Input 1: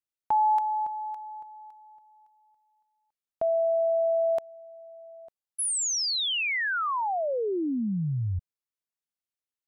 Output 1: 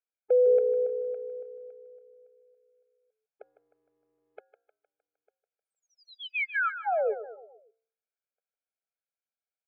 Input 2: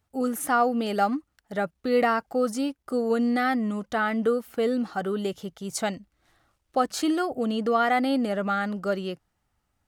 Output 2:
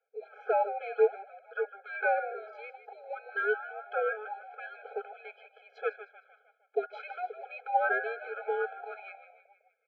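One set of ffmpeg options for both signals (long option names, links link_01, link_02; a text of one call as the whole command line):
ffmpeg -i in.wav -filter_complex "[0:a]bandreject=frequency=224:width_type=h:width=4,bandreject=frequency=448:width_type=h:width=4,bandreject=frequency=672:width_type=h:width=4,bandreject=frequency=896:width_type=h:width=4,bandreject=frequency=1120:width_type=h:width=4,bandreject=frequency=1344:width_type=h:width=4,bandreject=frequency=1568:width_type=h:width=4,bandreject=frequency=1792:width_type=h:width=4,bandreject=frequency=2016:width_type=h:width=4,highpass=frequency=510:width_type=q:width=0.5412,highpass=frequency=510:width_type=q:width=1.307,lowpass=frequency=2800:width_type=q:width=0.5176,lowpass=frequency=2800:width_type=q:width=0.7071,lowpass=frequency=2800:width_type=q:width=1.932,afreqshift=-360,asplit=2[link_01][link_02];[link_02]asplit=5[link_03][link_04][link_05][link_06][link_07];[link_03]adelay=154,afreqshift=-62,volume=-12dB[link_08];[link_04]adelay=308,afreqshift=-124,volume=-17.7dB[link_09];[link_05]adelay=462,afreqshift=-186,volume=-23.4dB[link_10];[link_06]adelay=616,afreqshift=-248,volume=-29dB[link_11];[link_07]adelay=770,afreqshift=-310,volume=-34.7dB[link_12];[link_08][link_09][link_10][link_11][link_12]amix=inputs=5:normalize=0[link_13];[link_01][link_13]amix=inputs=2:normalize=0,afftfilt=real='re*eq(mod(floor(b*sr/1024/430),2),1)':imag='im*eq(mod(floor(b*sr/1024/430),2),1)':win_size=1024:overlap=0.75,volume=2dB" out.wav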